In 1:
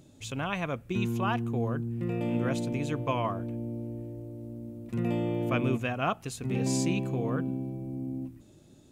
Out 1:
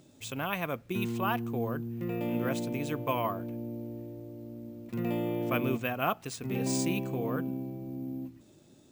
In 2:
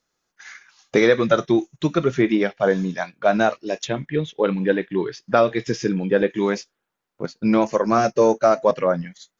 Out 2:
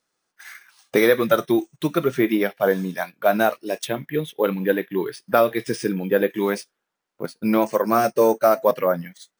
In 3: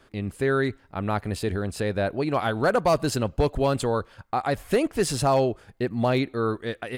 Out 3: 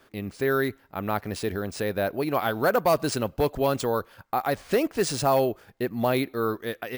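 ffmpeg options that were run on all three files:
-af "acrusher=samples=3:mix=1:aa=0.000001,lowshelf=frequency=110:gain=-11.5"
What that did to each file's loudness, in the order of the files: −1.5, −1.0, −1.0 LU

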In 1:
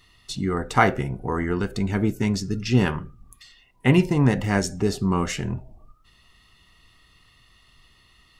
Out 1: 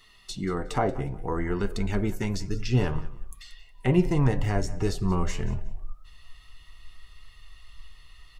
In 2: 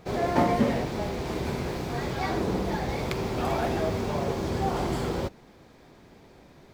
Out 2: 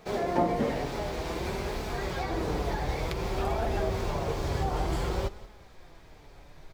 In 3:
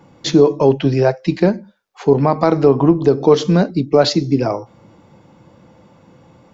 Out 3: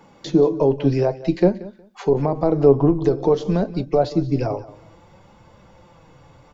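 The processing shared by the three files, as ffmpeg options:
-filter_complex "[0:a]acrossover=split=730[link_01][link_02];[link_01]equalizer=frequency=100:width=0.31:gain=-6.5[link_03];[link_02]acompressor=threshold=-36dB:ratio=10[link_04];[link_03][link_04]amix=inputs=2:normalize=0,aecho=1:1:182|364:0.126|0.029,flanger=delay=4.5:depth=2.7:regen=57:speed=0.55:shape=triangular,asubboost=boost=7.5:cutoff=79,volume=5dB"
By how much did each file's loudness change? −5.0, −2.5, −4.5 LU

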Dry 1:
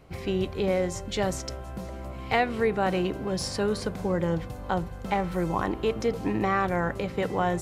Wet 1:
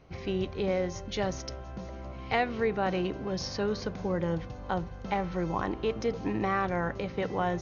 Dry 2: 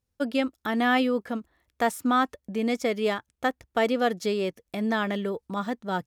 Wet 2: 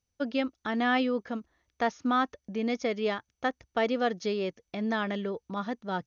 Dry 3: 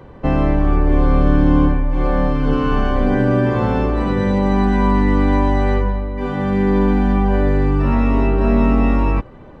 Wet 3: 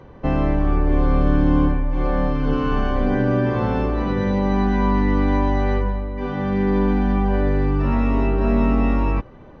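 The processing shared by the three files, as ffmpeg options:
-af "volume=-3.5dB" -ar 24000 -c:a mp2 -b:a 64k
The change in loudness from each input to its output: −3.5, −3.5, −3.5 LU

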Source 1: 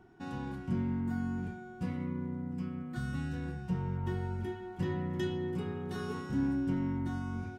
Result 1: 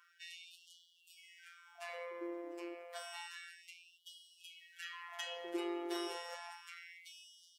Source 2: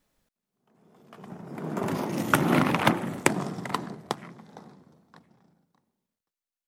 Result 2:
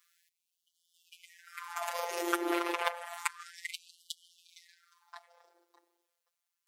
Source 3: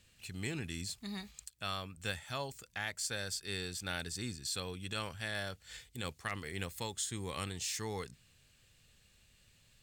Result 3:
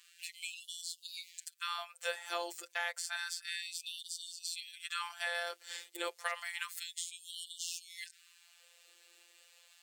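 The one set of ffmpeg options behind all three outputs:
-filter_complex "[0:a]acrossover=split=300|2100[link_01][link_02][link_03];[link_01]acompressor=threshold=-35dB:ratio=4[link_04];[link_02]acompressor=threshold=-39dB:ratio=4[link_05];[link_03]acompressor=threshold=-46dB:ratio=4[link_06];[link_04][link_05][link_06]amix=inputs=3:normalize=0,afftfilt=real='hypot(re,im)*cos(PI*b)':imag='0':win_size=1024:overlap=0.75,afftfilt=real='re*gte(b*sr/1024,300*pow(2900/300,0.5+0.5*sin(2*PI*0.3*pts/sr)))':imag='im*gte(b*sr/1024,300*pow(2900/300,0.5+0.5*sin(2*PI*0.3*pts/sr)))':win_size=1024:overlap=0.75,volume=9dB"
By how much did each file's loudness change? −10.0, −8.5, −0.5 LU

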